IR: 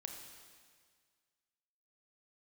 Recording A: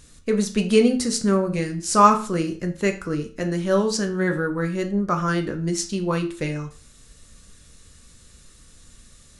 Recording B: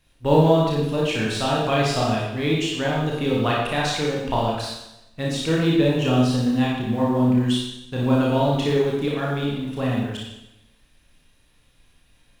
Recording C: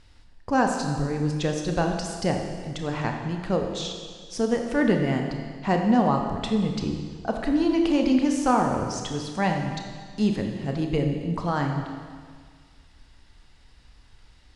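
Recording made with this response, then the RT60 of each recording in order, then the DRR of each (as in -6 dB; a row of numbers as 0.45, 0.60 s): C; 0.40, 0.90, 1.8 s; 4.5, -4.0, 2.5 dB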